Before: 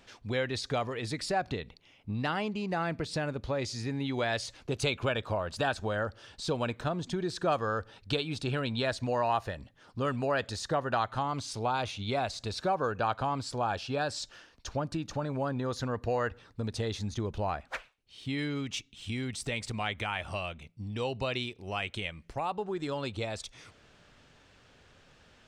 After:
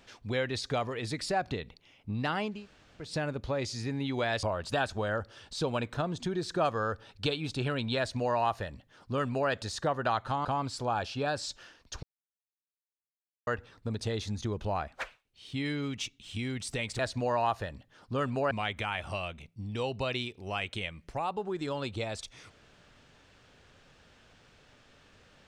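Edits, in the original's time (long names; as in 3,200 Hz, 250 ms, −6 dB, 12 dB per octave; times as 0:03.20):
0:02.56–0:03.05: fill with room tone, crossfade 0.24 s
0:04.43–0:05.30: remove
0:08.85–0:10.37: duplicate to 0:19.72
0:11.32–0:13.18: remove
0:14.76–0:16.20: silence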